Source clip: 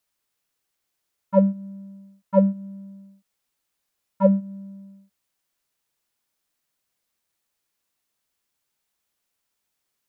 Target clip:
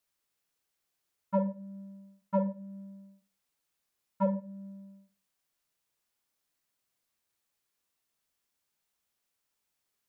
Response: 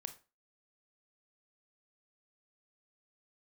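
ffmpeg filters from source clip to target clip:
-filter_complex "[0:a]alimiter=limit=-14dB:level=0:latency=1:release=406[link_01];[1:a]atrim=start_sample=2205[link_02];[link_01][link_02]afir=irnorm=-1:irlink=0"

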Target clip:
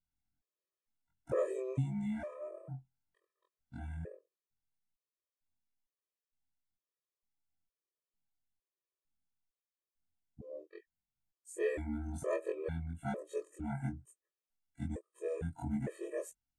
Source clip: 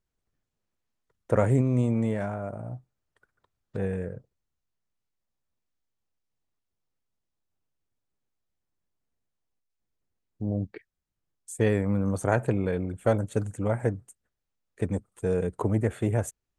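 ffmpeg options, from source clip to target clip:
ffmpeg -i in.wav -af "afftfilt=real='re':imag='-im':win_size=2048:overlap=0.75,afftfilt=real='re*gt(sin(2*PI*1.1*pts/sr)*(1-2*mod(floor(b*sr/1024/330),2)),0)':imag='im*gt(sin(2*PI*1.1*pts/sr)*(1-2*mod(floor(b*sr/1024/330),2)),0)':win_size=1024:overlap=0.75,volume=-3.5dB" out.wav

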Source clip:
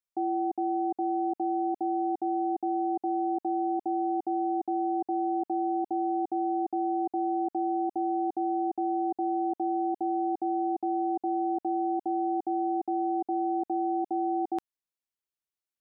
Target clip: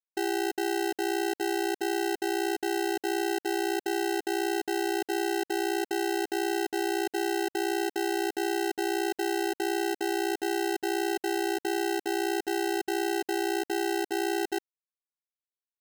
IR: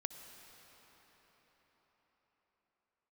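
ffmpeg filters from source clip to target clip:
-af "acrusher=samples=38:mix=1:aa=0.000001,aeval=exprs='sgn(val(0))*max(abs(val(0))-0.00126,0)':channel_layout=same"

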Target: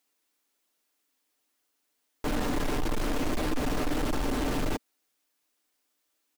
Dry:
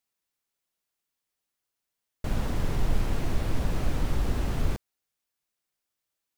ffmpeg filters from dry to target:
ffmpeg -i in.wav -af "lowshelf=frequency=200:width_type=q:width=3:gain=-7,asoftclip=type=hard:threshold=-34dB,aecho=1:1:6.7:0.35,volume=7.5dB" out.wav

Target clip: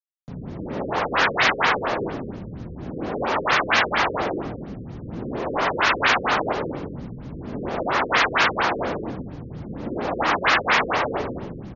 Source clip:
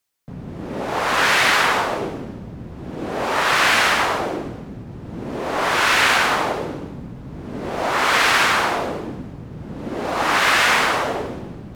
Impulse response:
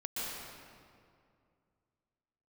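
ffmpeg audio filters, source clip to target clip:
-af "acrusher=bits=7:mix=0:aa=0.5,aecho=1:1:263:0.188,afftfilt=real='re*lt(b*sr/1024,520*pow(7100/520,0.5+0.5*sin(2*PI*4.3*pts/sr)))':imag='im*lt(b*sr/1024,520*pow(7100/520,0.5+0.5*sin(2*PI*4.3*pts/sr)))':win_size=1024:overlap=0.75,volume=-1dB"

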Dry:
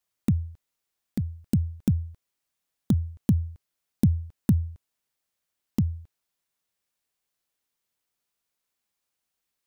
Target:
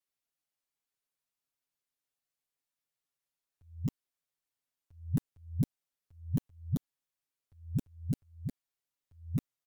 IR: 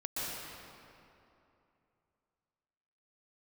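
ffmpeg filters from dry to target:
-filter_complex "[0:a]areverse,aecho=1:1:7.2:0.97[link_01];[1:a]atrim=start_sample=2205,atrim=end_sample=3087,asetrate=37926,aresample=44100[link_02];[link_01][link_02]afir=irnorm=-1:irlink=0,volume=-8dB"

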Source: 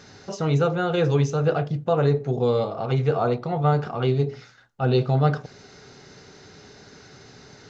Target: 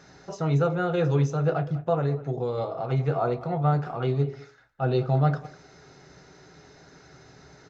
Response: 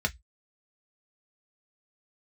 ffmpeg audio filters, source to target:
-filter_complex "[0:a]asettb=1/sr,asplit=3[link_01][link_02][link_03];[link_01]atrim=end=1.974[link_04];[link_02]atrim=start=1.97:end=2.58,asetpts=PTS-STARTPTS,afade=type=in:duration=0.004:curve=qsin,afade=type=out:start_time=0.606:duration=0.004:curve=qsin,acompressor=threshold=-22dB:ratio=2[link_05];[link_03]atrim=start=2.576[link_06];[link_04][link_05]acrossfade=duration=0.004:curve1=hsin:curve2=qsin[link_07];[link_07][link_06]acrossfade=duration=0.004:curve1=qsin:curve2=hsin,asplit=2[link_08][link_09];[link_09]adelay=200,highpass=300,lowpass=3400,asoftclip=type=hard:threshold=-17.5dB,volume=-17dB[link_10];[link_08][link_10]amix=inputs=2:normalize=0,asplit=2[link_11][link_12];[1:a]atrim=start_sample=2205[link_13];[link_12][link_13]afir=irnorm=-1:irlink=0,volume=-13.5dB[link_14];[link_11][link_14]amix=inputs=2:normalize=0,volume=-5dB"

